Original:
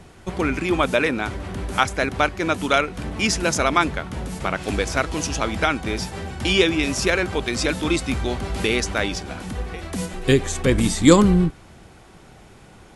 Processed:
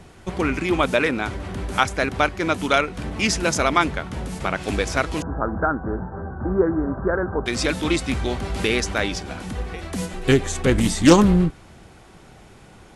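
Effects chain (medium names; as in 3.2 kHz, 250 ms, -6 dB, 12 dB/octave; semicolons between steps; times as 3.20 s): 5.22–7.46 s: steep low-pass 1.6 kHz 96 dB/octave; loudspeaker Doppler distortion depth 0.26 ms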